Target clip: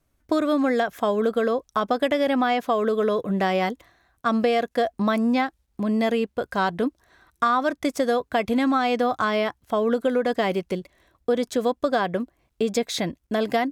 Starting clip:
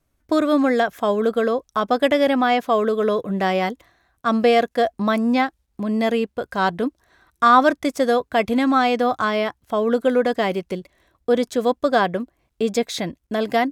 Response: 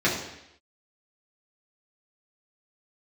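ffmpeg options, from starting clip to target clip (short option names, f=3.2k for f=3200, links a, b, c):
-af "acompressor=threshold=-18dB:ratio=6"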